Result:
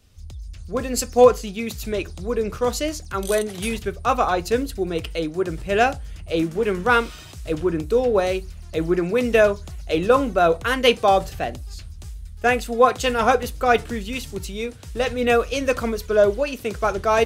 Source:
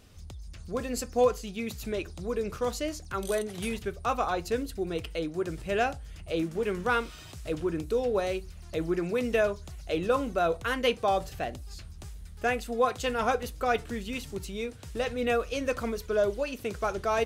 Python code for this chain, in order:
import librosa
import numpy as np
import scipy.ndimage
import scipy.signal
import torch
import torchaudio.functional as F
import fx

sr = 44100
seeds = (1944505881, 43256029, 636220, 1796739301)

y = fx.band_widen(x, sr, depth_pct=40)
y = y * 10.0 ** (8.5 / 20.0)